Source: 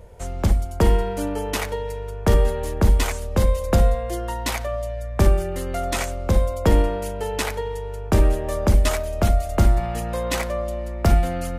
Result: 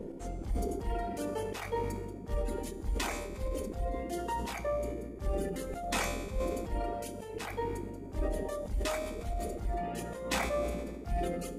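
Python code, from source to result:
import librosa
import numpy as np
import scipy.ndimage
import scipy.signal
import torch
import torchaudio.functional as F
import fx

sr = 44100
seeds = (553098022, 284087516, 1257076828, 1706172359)

y = fx.high_shelf(x, sr, hz=8800.0, db=-5.0)
y = fx.rider(y, sr, range_db=3, speed_s=0.5)
y = fx.peak_eq(y, sr, hz=750.0, db=5.0, octaves=0.26)
y = fx.doubler(y, sr, ms=29.0, db=-9.0)
y = fx.dmg_noise_band(y, sr, seeds[0], low_hz=170.0, high_hz=470.0, level_db=-33.0)
y = fx.dereverb_blind(y, sr, rt60_s=1.5)
y = fx.auto_swell(y, sr, attack_ms=188.0)
y = fx.comb_fb(y, sr, f0_hz=67.0, decay_s=1.5, harmonics='all', damping=0.0, mix_pct=70)
y = fx.sustainer(y, sr, db_per_s=31.0)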